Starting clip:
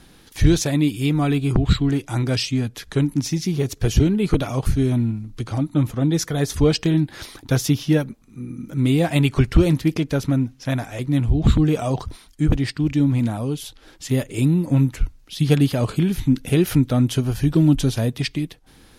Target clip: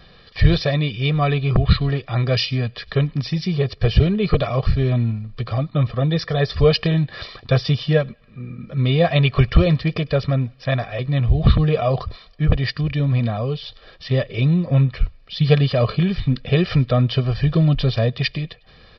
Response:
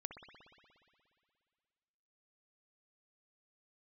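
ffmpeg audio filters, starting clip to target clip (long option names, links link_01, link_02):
-filter_complex "[0:a]lowshelf=frequency=110:gain=-5.5,aecho=1:1:1.7:0.81,asplit=2[link_01][link_02];[link_02]aderivative[link_03];[1:a]atrim=start_sample=2205,asetrate=31752,aresample=44100,adelay=100[link_04];[link_03][link_04]afir=irnorm=-1:irlink=0,volume=-14.5dB[link_05];[link_01][link_05]amix=inputs=2:normalize=0,aresample=11025,aresample=44100,volume=2dB"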